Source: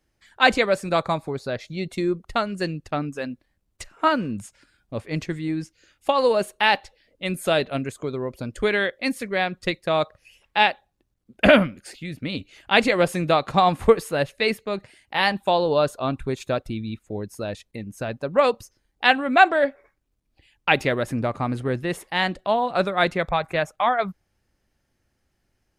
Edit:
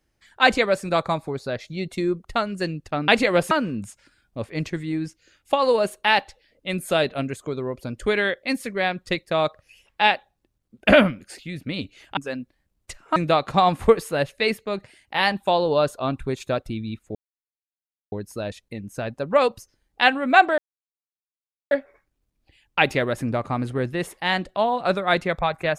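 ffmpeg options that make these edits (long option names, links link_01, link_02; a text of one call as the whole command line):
ffmpeg -i in.wav -filter_complex "[0:a]asplit=7[link_01][link_02][link_03][link_04][link_05][link_06][link_07];[link_01]atrim=end=3.082[link_08];[link_02]atrim=start=12.728:end=13.162[link_09];[link_03]atrim=start=4.068:end=12.732[link_10];[link_04]atrim=start=3.078:end=4.072[link_11];[link_05]atrim=start=13.158:end=17.15,asetpts=PTS-STARTPTS,afade=type=out:start_time=3.988:duration=0.004:curve=hsin,apad=pad_dur=0.97[link_12];[link_06]atrim=start=17.15:end=19.61,asetpts=PTS-STARTPTS,afade=type=in:duration=0.004:curve=hsin,afade=type=out:start_time=2.456:duration=0.004:curve=hsin,apad=pad_dur=1.13[link_13];[link_07]atrim=start=19.61,asetpts=PTS-STARTPTS,afade=type=in:duration=0.004:curve=hsin[link_14];[link_08][link_09]acrossfade=duration=0.004:curve1=hsin:curve2=hsin[link_15];[link_15][link_10]acrossfade=duration=0.004:curve1=hsin:curve2=hsin[link_16];[link_16][link_11]acrossfade=duration=0.004:curve1=hsin:curve2=hsin[link_17];[link_12][link_13][link_14]concat=n=3:v=0:a=1[link_18];[link_17][link_18]acrossfade=duration=0.004:curve1=hsin:curve2=hsin" out.wav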